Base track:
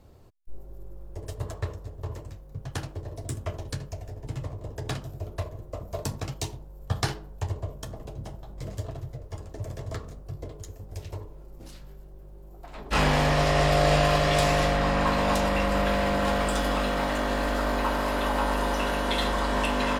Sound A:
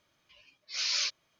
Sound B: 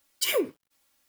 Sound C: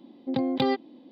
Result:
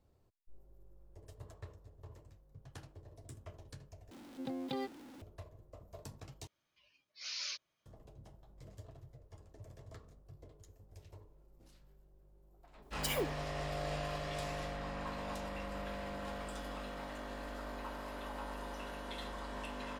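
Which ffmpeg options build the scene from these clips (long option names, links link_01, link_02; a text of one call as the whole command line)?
ffmpeg -i bed.wav -i cue0.wav -i cue1.wav -i cue2.wav -filter_complex "[0:a]volume=-18dB[link_01];[3:a]aeval=exprs='val(0)+0.5*0.02*sgn(val(0))':channel_layout=same[link_02];[link_01]asplit=3[link_03][link_04][link_05];[link_03]atrim=end=4.114[link_06];[link_02]atrim=end=1.11,asetpts=PTS-STARTPTS,volume=-15.5dB[link_07];[link_04]atrim=start=5.216:end=6.474[link_08];[1:a]atrim=end=1.39,asetpts=PTS-STARTPTS,volume=-11dB[link_09];[link_05]atrim=start=7.856[link_10];[2:a]atrim=end=1.08,asetpts=PTS-STARTPTS,volume=-11dB,afade=type=in:duration=0.004:curve=hsin,afade=type=out:start_time=1.076:duration=0.004:curve=hsin,adelay=12820[link_11];[link_06][link_07]acrossfade=duration=0.004:curve1=hsin:curve2=hsin[link_12];[link_12][link_08]acrossfade=duration=0.004:curve1=hsin:curve2=hsin[link_13];[link_13][link_09]acrossfade=duration=0.004:curve1=hsin:curve2=hsin[link_14];[link_14][link_10]acrossfade=duration=0.004:curve1=hsin:curve2=hsin[link_15];[link_15][link_11]amix=inputs=2:normalize=0" out.wav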